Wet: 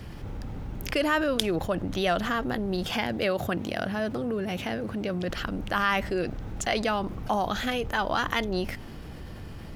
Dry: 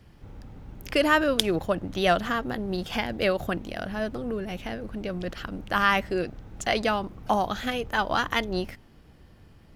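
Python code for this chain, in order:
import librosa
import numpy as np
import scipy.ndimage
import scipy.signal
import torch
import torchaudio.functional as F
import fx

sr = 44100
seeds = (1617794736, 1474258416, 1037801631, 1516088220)

y = fx.highpass(x, sr, hz=73.0, slope=24, at=(2.9, 5.3))
y = fx.env_flatten(y, sr, amount_pct=50)
y = y * librosa.db_to_amplitude(-5.0)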